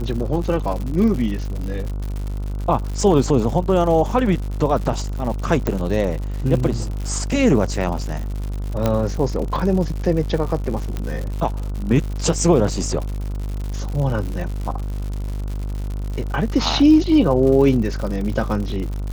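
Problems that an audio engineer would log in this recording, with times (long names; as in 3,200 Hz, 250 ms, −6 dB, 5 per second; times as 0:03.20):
mains buzz 50 Hz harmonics 30 −25 dBFS
surface crackle 130 per second −27 dBFS
0:05.67: click −9 dBFS
0:08.86: click −6 dBFS
0:10.97: click −13 dBFS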